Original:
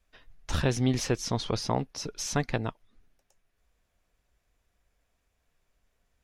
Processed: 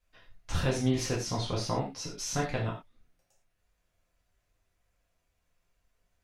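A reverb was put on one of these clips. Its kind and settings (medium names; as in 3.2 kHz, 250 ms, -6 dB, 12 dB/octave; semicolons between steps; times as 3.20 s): gated-style reverb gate 140 ms falling, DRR -4.5 dB; trim -7.5 dB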